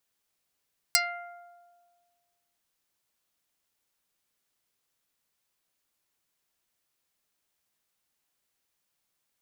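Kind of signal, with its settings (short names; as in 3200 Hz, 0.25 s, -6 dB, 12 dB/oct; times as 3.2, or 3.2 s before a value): plucked string F5, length 1.63 s, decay 1.71 s, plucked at 0.2, dark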